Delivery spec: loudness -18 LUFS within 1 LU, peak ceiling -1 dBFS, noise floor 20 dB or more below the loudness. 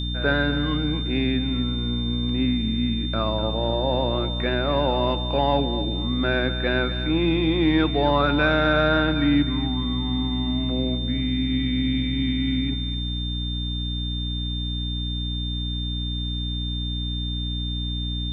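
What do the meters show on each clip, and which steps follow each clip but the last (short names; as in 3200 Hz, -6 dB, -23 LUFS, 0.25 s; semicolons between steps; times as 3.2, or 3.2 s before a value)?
hum 60 Hz; harmonics up to 300 Hz; hum level -25 dBFS; steady tone 3600 Hz; tone level -31 dBFS; loudness -24.0 LUFS; peak -7.5 dBFS; loudness target -18.0 LUFS
-> notches 60/120/180/240/300 Hz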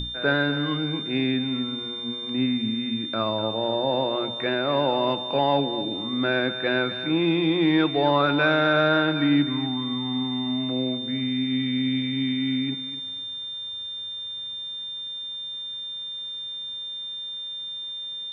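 hum none; steady tone 3600 Hz; tone level -31 dBFS
-> notch 3600 Hz, Q 30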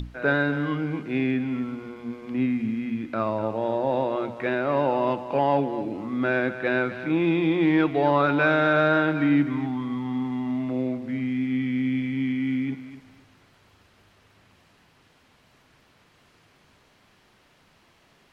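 steady tone none; loudness -25.0 LUFS; peak -9.0 dBFS; loudness target -18.0 LUFS
-> gain +7 dB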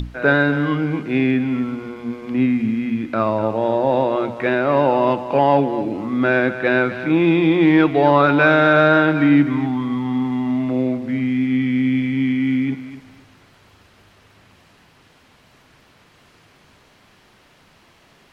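loudness -18.0 LUFS; peak -2.0 dBFS; noise floor -53 dBFS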